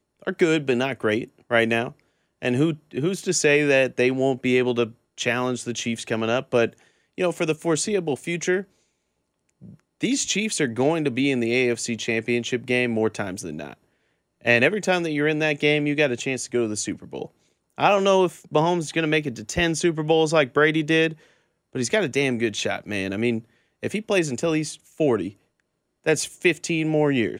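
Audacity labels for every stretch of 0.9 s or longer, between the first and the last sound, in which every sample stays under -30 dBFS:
8.610000	10.030000	silence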